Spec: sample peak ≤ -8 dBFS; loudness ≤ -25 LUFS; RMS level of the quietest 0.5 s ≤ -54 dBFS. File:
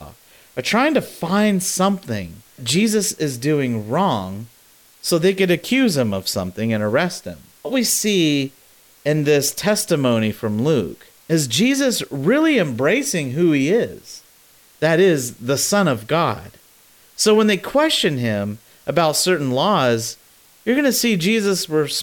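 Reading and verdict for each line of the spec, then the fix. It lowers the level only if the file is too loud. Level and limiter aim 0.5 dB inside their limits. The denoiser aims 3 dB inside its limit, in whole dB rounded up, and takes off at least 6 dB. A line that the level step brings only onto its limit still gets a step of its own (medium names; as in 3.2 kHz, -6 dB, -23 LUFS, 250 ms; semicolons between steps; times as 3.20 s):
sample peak -4.0 dBFS: fail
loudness -18.5 LUFS: fail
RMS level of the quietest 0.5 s -51 dBFS: fail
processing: trim -7 dB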